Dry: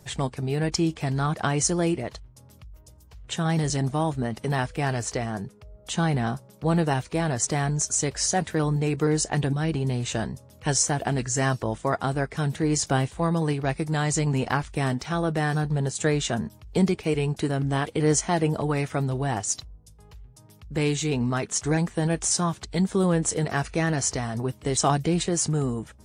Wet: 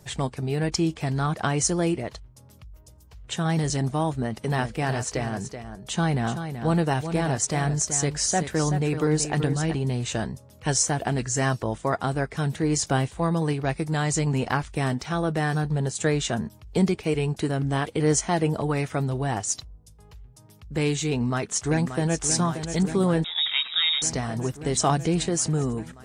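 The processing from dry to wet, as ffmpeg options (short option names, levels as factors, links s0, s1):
-filter_complex "[0:a]asplit=3[s0][s1][s2];[s0]afade=t=out:st=4.48:d=0.02[s3];[s1]aecho=1:1:380:0.355,afade=t=in:st=4.48:d=0.02,afade=t=out:st=9.73:d=0.02[s4];[s2]afade=t=in:st=9.73:d=0.02[s5];[s3][s4][s5]amix=inputs=3:normalize=0,asplit=2[s6][s7];[s7]afade=t=in:st=21.13:d=0.01,afade=t=out:st=22.24:d=0.01,aecho=0:1:580|1160|1740|2320|2900|3480|4060|4640|5220|5800|6380|6960:0.354813|0.283851|0.227081|0.181664|0.145332|0.116265|0.0930122|0.0744098|0.0595278|0.0476222|0.0380978|0.0304782[s8];[s6][s8]amix=inputs=2:normalize=0,asettb=1/sr,asplit=3[s9][s10][s11];[s9]atrim=end=23.244[s12];[s10]atrim=start=23.24:end=24.02,asetpts=PTS-STARTPTS,afade=t=in:d=0.004:c=qsin,afade=t=out:st=0.776:d=0.004:c=qsin,lowpass=f=3300:t=q:w=0.5098,lowpass=f=3300:t=q:w=0.6013,lowpass=f=3300:t=q:w=0.9,lowpass=f=3300:t=q:w=2.563,afreqshift=-3900[s13];[s11]atrim=start=24.016[s14];[s12][s13]acrossfade=d=0.004:c1=hsin:c2=qsin[s15];[s15][s14]acrossfade=d=0.004:c1=qsin:c2=hsin"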